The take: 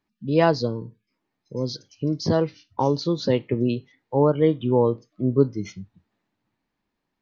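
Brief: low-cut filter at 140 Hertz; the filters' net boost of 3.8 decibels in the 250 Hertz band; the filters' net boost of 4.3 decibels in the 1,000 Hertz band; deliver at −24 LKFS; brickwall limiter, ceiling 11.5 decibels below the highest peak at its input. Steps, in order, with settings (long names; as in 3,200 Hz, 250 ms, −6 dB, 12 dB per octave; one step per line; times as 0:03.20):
high-pass filter 140 Hz
parametric band 250 Hz +5 dB
parametric band 1,000 Hz +5 dB
level +2 dB
brickwall limiter −12 dBFS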